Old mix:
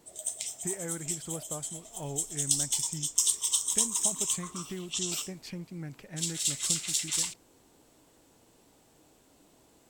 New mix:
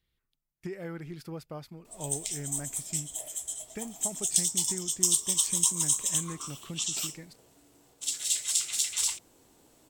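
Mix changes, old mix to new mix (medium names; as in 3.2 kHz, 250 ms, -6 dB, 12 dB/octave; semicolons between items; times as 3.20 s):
background: entry +1.85 s; master: add treble shelf 9.1 kHz +4 dB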